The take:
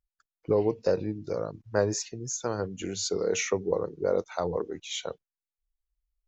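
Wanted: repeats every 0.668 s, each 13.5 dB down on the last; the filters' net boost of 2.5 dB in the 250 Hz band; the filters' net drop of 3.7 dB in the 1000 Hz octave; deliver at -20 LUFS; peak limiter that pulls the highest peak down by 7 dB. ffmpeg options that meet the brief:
-af "equalizer=f=250:t=o:g=4,equalizer=f=1k:t=o:g=-5.5,alimiter=limit=-18.5dB:level=0:latency=1,aecho=1:1:668|1336:0.211|0.0444,volume=11.5dB"

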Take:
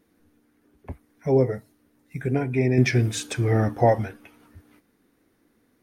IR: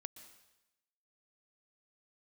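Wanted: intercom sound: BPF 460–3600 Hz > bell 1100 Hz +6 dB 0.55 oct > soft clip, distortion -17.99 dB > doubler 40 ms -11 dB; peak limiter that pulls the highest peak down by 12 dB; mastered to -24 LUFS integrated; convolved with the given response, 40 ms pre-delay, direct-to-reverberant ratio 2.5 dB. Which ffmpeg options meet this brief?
-filter_complex "[0:a]alimiter=limit=-18dB:level=0:latency=1,asplit=2[a][b];[1:a]atrim=start_sample=2205,adelay=40[c];[b][c]afir=irnorm=-1:irlink=0,volume=2dB[d];[a][d]amix=inputs=2:normalize=0,highpass=460,lowpass=3.6k,equalizer=f=1.1k:t=o:w=0.55:g=6,asoftclip=threshold=-22dB,asplit=2[e][f];[f]adelay=40,volume=-11dB[g];[e][g]amix=inputs=2:normalize=0,volume=8dB"

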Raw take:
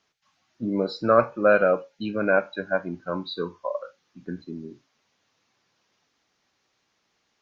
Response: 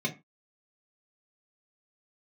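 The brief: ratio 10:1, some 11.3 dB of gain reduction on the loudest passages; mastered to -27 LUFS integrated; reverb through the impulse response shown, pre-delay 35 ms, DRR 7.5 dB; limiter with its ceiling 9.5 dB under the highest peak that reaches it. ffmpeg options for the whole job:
-filter_complex "[0:a]acompressor=threshold=-24dB:ratio=10,alimiter=limit=-23.5dB:level=0:latency=1,asplit=2[a][b];[1:a]atrim=start_sample=2205,adelay=35[c];[b][c]afir=irnorm=-1:irlink=0,volume=-14dB[d];[a][d]amix=inputs=2:normalize=0,volume=7.5dB"

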